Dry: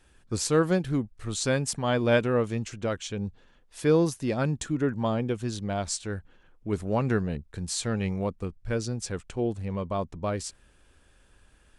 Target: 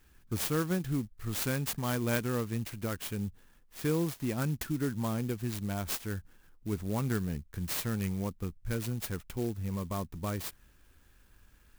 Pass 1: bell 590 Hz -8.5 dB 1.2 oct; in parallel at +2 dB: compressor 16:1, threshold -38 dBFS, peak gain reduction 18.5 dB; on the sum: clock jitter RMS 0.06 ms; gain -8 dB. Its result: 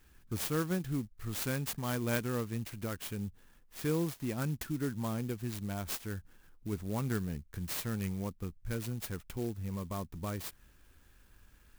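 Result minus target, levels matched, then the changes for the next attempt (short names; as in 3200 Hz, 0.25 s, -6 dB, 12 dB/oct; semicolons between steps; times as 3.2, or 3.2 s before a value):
compressor: peak gain reduction +9 dB
change: compressor 16:1, threshold -28.5 dBFS, peak gain reduction 9.5 dB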